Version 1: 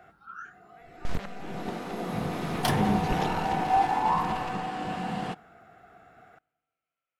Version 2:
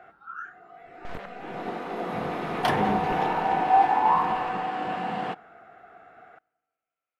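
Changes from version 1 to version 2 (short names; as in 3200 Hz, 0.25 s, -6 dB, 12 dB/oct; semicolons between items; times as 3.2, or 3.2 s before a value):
first sound +4.5 dB; master: add tone controls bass -11 dB, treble -14 dB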